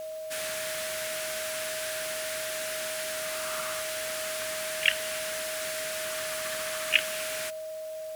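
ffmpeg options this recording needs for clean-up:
-af "bandreject=f=630:w=30,afwtdn=0.0025"

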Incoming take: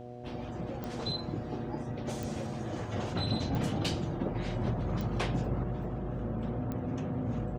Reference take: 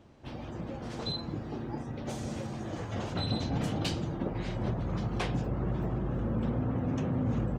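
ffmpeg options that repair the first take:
-af "adeclick=t=4,bandreject=f=121.6:t=h:w=4,bandreject=f=243.2:t=h:w=4,bandreject=f=364.8:t=h:w=4,bandreject=f=486.4:t=h:w=4,bandreject=f=608:t=h:w=4,bandreject=f=729.6:t=h:w=4,asetnsamples=n=441:p=0,asendcmd='5.63 volume volume 4dB',volume=0dB"

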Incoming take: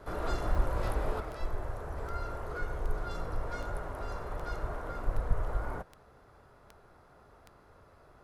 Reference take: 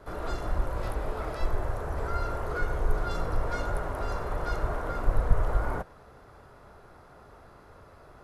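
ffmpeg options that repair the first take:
-af "adeclick=t=4,asetnsamples=n=441:p=0,asendcmd='1.2 volume volume 6.5dB',volume=0dB"

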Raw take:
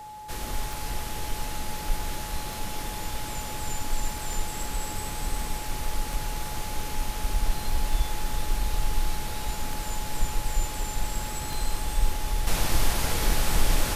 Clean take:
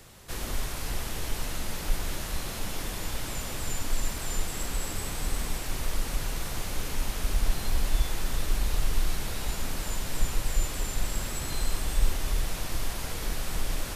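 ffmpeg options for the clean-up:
-af "adeclick=t=4,bandreject=f=850:w=30,asetnsamples=n=441:p=0,asendcmd='12.47 volume volume -7.5dB',volume=0dB"

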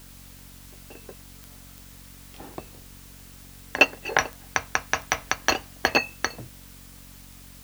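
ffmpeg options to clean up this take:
-af "adeclick=t=4,bandreject=f=46.1:t=h:w=4,bandreject=f=92.2:t=h:w=4,bandreject=f=138.3:t=h:w=4,bandreject=f=184.4:t=h:w=4,bandreject=f=230.5:t=h:w=4,bandreject=f=276.6:t=h:w=4,afftdn=nr=28:nf=-47"

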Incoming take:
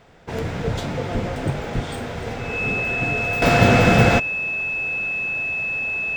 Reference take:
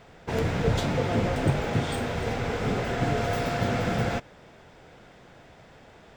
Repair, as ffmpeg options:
-filter_complex "[0:a]bandreject=f=2.6k:w=30,asplit=3[a][b][c];[a]afade=t=out:st=1.13:d=0.02[d];[b]highpass=f=140:w=0.5412,highpass=f=140:w=1.3066,afade=t=in:st=1.13:d=0.02,afade=t=out:st=1.25:d=0.02[e];[c]afade=t=in:st=1.25:d=0.02[f];[d][e][f]amix=inputs=3:normalize=0,asplit=3[g][h][i];[g]afade=t=out:st=1.74:d=0.02[j];[h]highpass=f=140:w=0.5412,highpass=f=140:w=1.3066,afade=t=in:st=1.74:d=0.02,afade=t=out:st=1.86:d=0.02[k];[i]afade=t=in:st=1.86:d=0.02[l];[j][k][l]amix=inputs=3:normalize=0,asetnsamples=n=441:p=0,asendcmd='3.42 volume volume -12dB',volume=0dB"

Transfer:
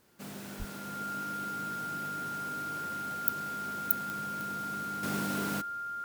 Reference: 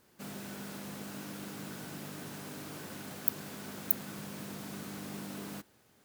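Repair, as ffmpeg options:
-filter_complex "[0:a]adeclick=t=4,bandreject=f=1.4k:w=30,asplit=3[a][b][c];[a]afade=t=out:st=0.58:d=0.02[d];[b]highpass=f=140:w=0.5412,highpass=f=140:w=1.3066,afade=t=in:st=0.58:d=0.02,afade=t=out:st=0.7:d=0.02[e];[c]afade=t=in:st=0.7:d=0.02[f];[d][e][f]amix=inputs=3:normalize=0,asetnsamples=n=441:p=0,asendcmd='5.03 volume volume -8dB',volume=0dB"

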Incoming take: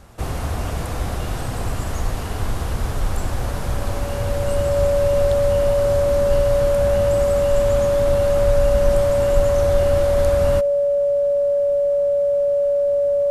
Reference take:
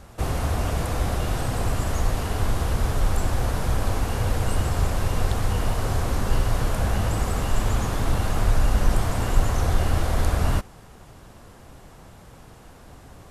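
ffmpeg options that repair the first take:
-af "bandreject=f=570:w=30"

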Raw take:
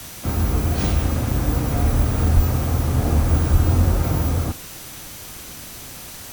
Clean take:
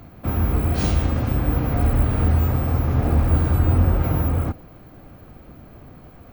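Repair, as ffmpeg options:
-filter_complex "[0:a]bandreject=f=6k:w=30,asplit=3[a][b][c];[a]afade=t=out:st=2.35:d=0.02[d];[b]highpass=f=140:w=0.5412,highpass=f=140:w=1.3066,afade=t=in:st=2.35:d=0.02,afade=t=out:st=2.47:d=0.02[e];[c]afade=t=in:st=2.47:d=0.02[f];[d][e][f]amix=inputs=3:normalize=0,asplit=3[g][h][i];[g]afade=t=out:st=3.52:d=0.02[j];[h]highpass=f=140:w=0.5412,highpass=f=140:w=1.3066,afade=t=in:st=3.52:d=0.02,afade=t=out:st=3.64:d=0.02[k];[i]afade=t=in:st=3.64:d=0.02[l];[j][k][l]amix=inputs=3:normalize=0,afwtdn=0.014"

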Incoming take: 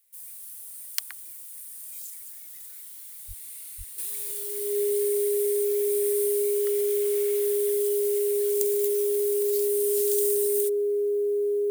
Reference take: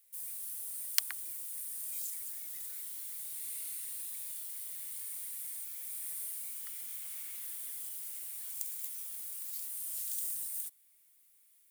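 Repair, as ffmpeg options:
-filter_complex "[0:a]bandreject=f=410:w=30,asplit=3[a][b][c];[a]afade=t=out:st=3.27:d=0.02[d];[b]highpass=f=140:w=0.5412,highpass=f=140:w=1.3066,afade=t=in:st=3.27:d=0.02,afade=t=out:st=3.39:d=0.02[e];[c]afade=t=in:st=3.39:d=0.02[f];[d][e][f]amix=inputs=3:normalize=0,asplit=3[g][h][i];[g]afade=t=out:st=3.77:d=0.02[j];[h]highpass=f=140:w=0.5412,highpass=f=140:w=1.3066,afade=t=in:st=3.77:d=0.02,afade=t=out:st=3.89:d=0.02[k];[i]afade=t=in:st=3.89:d=0.02[l];[j][k][l]amix=inputs=3:normalize=0,asetnsamples=n=441:p=0,asendcmd='3.98 volume volume -9dB',volume=0dB"

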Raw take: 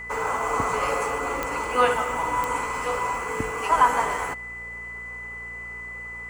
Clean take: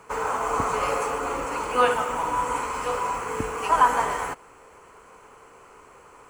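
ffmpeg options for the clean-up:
-af "adeclick=t=4,bandreject=f=58.7:t=h:w=4,bandreject=f=117.4:t=h:w=4,bandreject=f=176.1:t=h:w=4,bandreject=f=234.8:t=h:w=4,bandreject=f=2k:w=30"

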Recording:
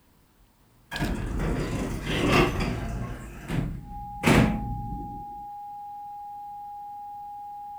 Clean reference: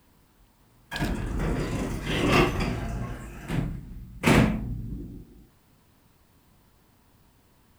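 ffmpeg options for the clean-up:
-af "bandreject=f=820:w=30"

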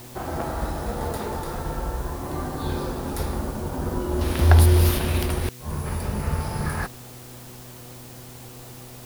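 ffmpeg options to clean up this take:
-af "bandreject=f=123.3:t=h:w=4,bandreject=f=246.6:t=h:w=4,bandreject=f=369.9:t=h:w=4,bandreject=f=493.2:t=h:w=4,afwtdn=0.005"

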